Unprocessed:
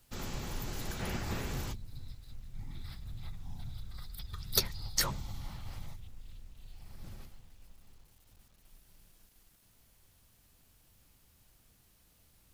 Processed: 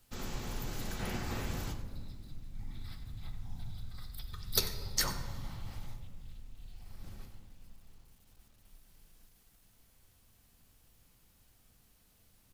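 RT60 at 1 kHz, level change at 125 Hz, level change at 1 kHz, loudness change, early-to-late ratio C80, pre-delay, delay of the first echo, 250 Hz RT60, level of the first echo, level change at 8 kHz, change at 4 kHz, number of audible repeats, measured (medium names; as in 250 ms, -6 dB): 1.7 s, -0.5 dB, -0.5 dB, -1.0 dB, 10.0 dB, 3 ms, 94 ms, 3.3 s, -14.5 dB, -1.0 dB, -1.0 dB, 1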